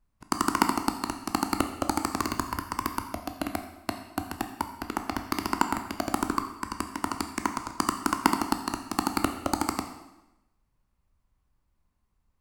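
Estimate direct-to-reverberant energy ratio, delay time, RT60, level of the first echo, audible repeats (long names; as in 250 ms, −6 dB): 6.0 dB, no echo audible, 0.95 s, no echo audible, no echo audible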